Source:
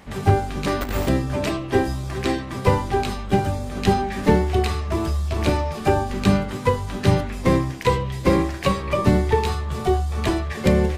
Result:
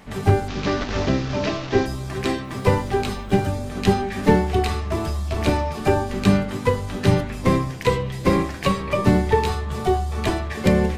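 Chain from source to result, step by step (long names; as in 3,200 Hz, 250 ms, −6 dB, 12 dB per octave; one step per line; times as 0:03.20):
0:00.48–0:01.86: linear delta modulator 32 kbit/s, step −27.5 dBFS
0:02.44–0:03.49: bit-depth reduction 10 bits, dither none
convolution reverb, pre-delay 4 ms, DRR 11 dB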